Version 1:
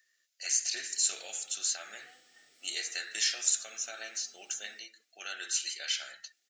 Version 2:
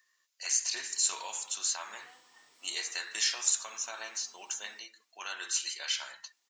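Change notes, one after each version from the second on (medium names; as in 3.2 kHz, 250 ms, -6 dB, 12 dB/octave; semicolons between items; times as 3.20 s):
master: remove Butterworth band-stop 1 kHz, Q 1.8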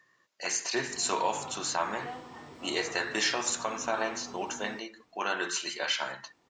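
speech -4.5 dB; master: remove differentiator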